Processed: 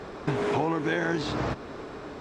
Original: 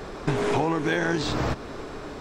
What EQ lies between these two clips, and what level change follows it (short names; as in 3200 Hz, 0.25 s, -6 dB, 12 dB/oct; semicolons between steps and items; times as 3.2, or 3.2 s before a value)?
HPF 80 Hz 6 dB/oct; LPF 4000 Hz 6 dB/oct; -2.0 dB